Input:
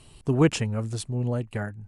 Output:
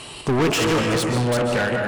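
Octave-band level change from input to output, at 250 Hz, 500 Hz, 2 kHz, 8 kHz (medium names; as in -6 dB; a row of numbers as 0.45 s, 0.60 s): +4.5 dB, +8.5 dB, +13.0 dB, +8.5 dB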